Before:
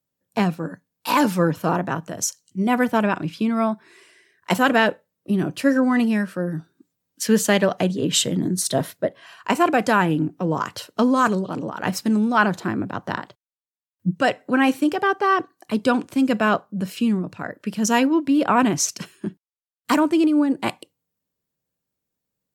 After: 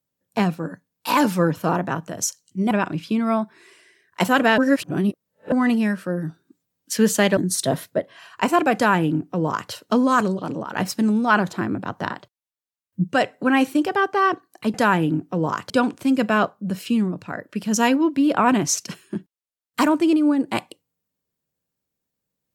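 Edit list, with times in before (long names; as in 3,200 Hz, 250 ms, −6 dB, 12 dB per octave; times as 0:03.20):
0:02.71–0:03.01: remove
0:04.88–0:05.82: reverse
0:07.67–0:08.44: remove
0:09.82–0:10.78: duplicate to 0:15.81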